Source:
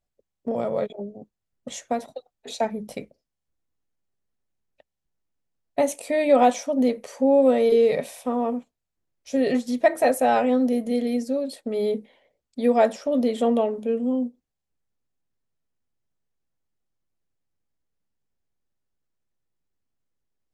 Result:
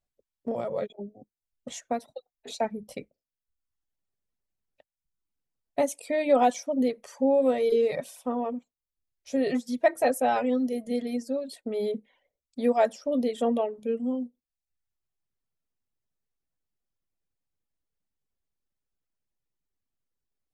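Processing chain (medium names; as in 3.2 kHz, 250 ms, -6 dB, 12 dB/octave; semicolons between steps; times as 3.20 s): reverb removal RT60 0.81 s; trim -3.5 dB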